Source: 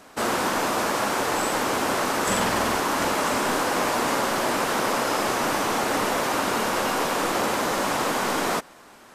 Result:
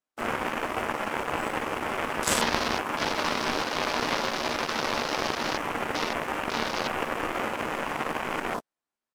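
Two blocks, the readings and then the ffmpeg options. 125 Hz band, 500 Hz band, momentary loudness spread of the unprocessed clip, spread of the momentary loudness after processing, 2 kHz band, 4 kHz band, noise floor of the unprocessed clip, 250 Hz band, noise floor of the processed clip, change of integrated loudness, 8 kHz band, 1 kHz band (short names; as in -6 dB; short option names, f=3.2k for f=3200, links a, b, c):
-4.5 dB, -6.0 dB, 1 LU, 4 LU, -3.5 dB, -3.0 dB, -49 dBFS, -6.0 dB, under -85 dBFS, -5.0 dB, -7.5 dB, -5.5 dB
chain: -filter_complex "[0:a]acrossover=split=2200[a][b];[b]acontrast=27[c];[a][c]amix=inputs=2:normalize=0,asplit=2[d][e];[e]adelay=13,volume=-5.5dB[f];[d][f]amix=inputs=2:normalize=0,aeval=exprs='0.447*(cos(1*acos(clip(val(0)/0.447,-1,1)))-cos(1*PI/2))+0.0794*(cos(2*acos(clip(val(0)/0.447,-1,1)))-cos(2*PI/2))+0.0794*(cos(3*acos(clip(val(0)/0.447,-1,1)))-cos(3*PI/2))+0.0224*(cos(4*acos(clip(val(0)/0.447,-1,1)))-cos(4*PI/2))+0.0282*(cos(7*acos(clip(val(0)/0.447,-1,1)))-cos(7*PI/2))':c=same,afwtdn=0.0178,volume=2dB"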